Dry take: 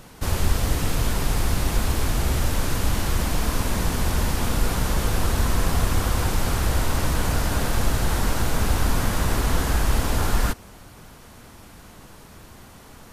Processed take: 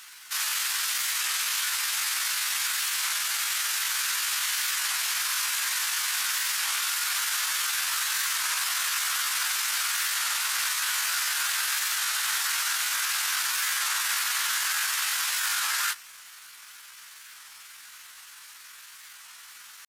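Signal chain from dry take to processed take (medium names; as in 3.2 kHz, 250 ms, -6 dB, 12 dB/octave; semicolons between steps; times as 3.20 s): high-pass 1.4 kHz 24 dB/octave; peaking EQ 5.9 kHz +2 dB 1.7 oct; in parallel at -7.5 dB: companded quantiser 4-bit; on the sum: tempo 0.66×; warped record 33 1/3 rpm, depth 100 cents; trim +1.5 dB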